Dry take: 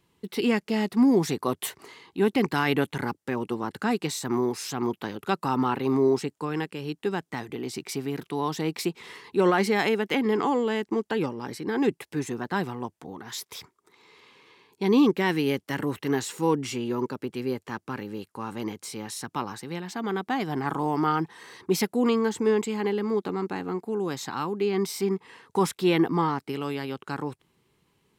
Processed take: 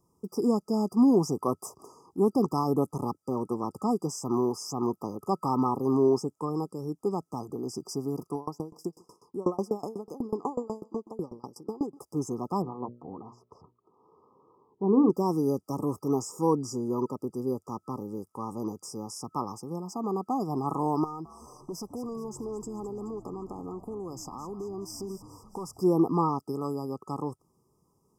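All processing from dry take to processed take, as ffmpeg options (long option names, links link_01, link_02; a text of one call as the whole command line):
ffmpeg -i in.wav -filter_complex "[0:a]asettb=1/sr,asplit=3[link_01][link_02][link_03];[link_01]atrim=end=8.354[link_04];[link_02]atrim=start=8.35:end=11.99,asetpts=PTS-STARTPTS,afade=type=in:duration=0.004:curve=qsin,afade=type=out:start_time=3.636:duration=0.004:curve=qsin,asuperstop=centerf=1800:order=4:qfactor=1.2,aecho=1:1:141|282|423:0.0794|0.0318|0.0127,atrim=end_sample=160524,aeval=exprs='val(0)*pow(10,-26*if(lt(mod(8.1*n/s,1),2*abs(8.1)/1000),1-mod(8.1*n/s,1)/(2*abs(8.1)/1000),(mod(8.1*n/s,1)-2*abs(8.1)/1000)/(1-2*abs(8.1)/1000))/20)':channel_layout=same[link_05];[link_03]atrim=start=11.986[link_06];[link_04][link_05]acrossfade=duration=0.004:curve1=hsin:curve2=qsin[link_07];[link_07][link_06]acrossfade=duration=0.004:curve1=qsin:curve2=hsin,asettb=1/sr,asplit=3[link_08][link_09][link_10];[link_08]atrim=end=12.624[link_11];[link_09]atrim=start=12.62:end=15.1,asetpts=PTS-STARTPTS,afade=type=in:duration=0.004:curve=qsin,afade=type=out:start_time=2.476:duration=0.004:curve=qsin,lowpass=1200,bandreject=frequency=60:width_type=h:width=6,bandreject=frequency=120:width_type=h:width=6,bandreject=frequency=180:width_type=h:width=6,bandreject=frequency=240:width_type=h:width=6,bandreject=frequency=300:width_type=h:width=6,bandreject=frequency=360:width_type=h:width=6,bandreject=frequency=420:width_type=h:width=6,bandreject=frequency=480:width_type=h:width=6,bandreject=frequency=540:width_type=h:width=6,bandreject=frequency=600:width_type=h:width=6[link_12];[link_10]atrim=start=15.096[link_13];[link_11][link_12]acrossfade=duration=0.004:curve1=hsin:curve2=qsin[link_14];[link_14][link_13]acrossfade=duration=0.004:curve1=qsin:curve2=hsin,asettb=1/sr,asplit=3[link_15][link_16][link_17];[link_15]atrim=end=21.044[link_18];[link_16]atrim=start=21.04:end=25.8,asetpts=PTS-STARTPTS,afade=type=in:duration=0.004:curve=qsin,afade=type=out:start_time=4.756:duration=0.004:curve=qsin,aeval=exprs='clip(val(0),-1,0.133)':channel_layout=same,acompressor=threshold=-33dB:ratio=6:attack=3.2:release=140:knee=1:detection=peak,asplit=7[link_19][link_20][link_21][link_22][link_23][link_24][link_25];[link_20]adelay=213,afreqshift=-90,volume=-14.5dB[link_26];[link_21]adelay=426,afreqshift=-180,volume=-19.2dB[link_27];[link_22]adelay=639,afreqshift=-270,volume=-24dB[link_28];[link_23]adelay=852,afreqshift=-360,volume=-28.7dB[link_29];[link_24]adelay=1065,afreqshift=-450,volume=-33.4dB[link_30];[link_25]adelay=1278,afreqshift=-540,volume=-38.2dB[link_31];[link_19][link_26][link_27][link_28][link_29][link_30][link_31]amix=inputs=7:normalize=0,atrim=end_sample=209916[link_32];[link_17]atrim=start=25.796[link_33];[link_18][link_32]acrossfade=duration=0.004:curve1=hsin:curve2=qsin[link_34];[link_34][link_33]acrossfade=duration=0.004:curve1=qsin:curve2=hsin,acrossover=split=8100[link_35][link_36];[link_36]acompressor=threshold=-48dB:ratio=4:attack=1:release=60[link_37];[link_35][link_37]amix=inputs=2:normalize=0,afftfilt=real='re*(1-between(b*sr/4096,1300,4800))':imag='im*(1-between(b*sr/4096,1300,4800))':win_size=4096:overlap=0.75,volume=-1dB" out.wav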